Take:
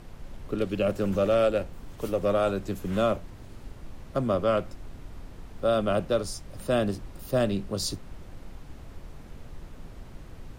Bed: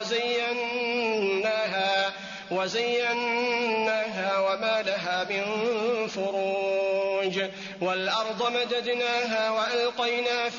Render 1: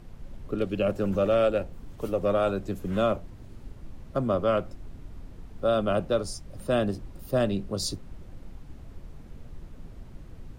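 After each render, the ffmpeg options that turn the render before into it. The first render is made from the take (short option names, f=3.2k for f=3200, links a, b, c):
-af "afftdn=nr=6:nf=-45"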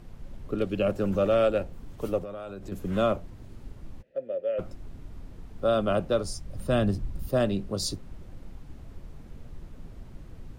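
-filter_complex "[0:a]asettb=1/sr,asplit=3[a][b][c];[a]atrim=end=2.184[d];[b]atrim=start=2.18:end=2.72,asetpts=PTS-STARTPTS,afade=t=in:d=0.004:c=qsin,afade=t=out:st=0.536:d=0.004:c=qsin,acompressor=threshold=-34dB:ratio=10:attack=3.2:release=140:knee=1:detection=peak[e];[c]atrim=start=2.716[f];[d][e]acrossfade=d=0.004:c1=hsin:c2=qsin[g];[g][f]acrossfade=d=0.004:c1=qsin:c2=hsin,asplit=3[h][i][j];[h]afade=t=out:st=4.01:d=0.02[k];[i]asplit=3[l][m][n];[l]bandpass=f=530:t=q:w=8,volume=0dB[o];[m]bandpass=f=1.84k:t=q:w=8,volume=-6dB[p];[n]bandpass=f=2.48k:t=q:w=8,volume=-9dB[q];[o][p][q]amix=inputs=3:normalize=0,afade=t=in:st=4.01:d=0.02,afade=t=out:st=4.58:d=0.02[r];[j]afade=t=in:st=4.58:d=0.02[s];[k][r][s]amix=inputs=3:normalize=0,asettb=1/sr,asplit=3[t][u][v];[t]atrim=end=6.154[w];[u]atrim=start=6.15:end=7.29,asetpts=PTS-STARTPTS,afade=t=in:d=0.004:c=qsin,afade=t=out:st=1.136:d=0.004:c=qsin,asubboost=boost=6.5:cutoff=230[x];[v]atrim=start=7.286[y];[w][x]acrossfade=d=0.004:c1=hsin:c2=qsin[z];[z][y]acrossfade=d=0.004:c1=qsin:c2=hsin"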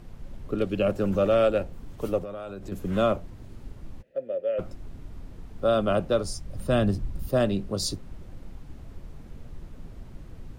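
-af "volume=1.5dB"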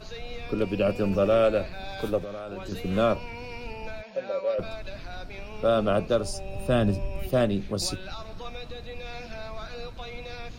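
-filter_complex "[1:a]volume=-14dB[a];[0:a][a]amix=inputs=2:normalize=0"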